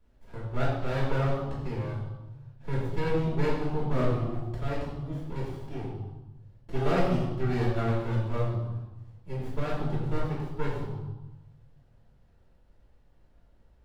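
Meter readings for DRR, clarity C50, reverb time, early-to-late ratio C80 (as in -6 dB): -10.5 dB, 1.0 dB, 1.0 s, 3.5 dB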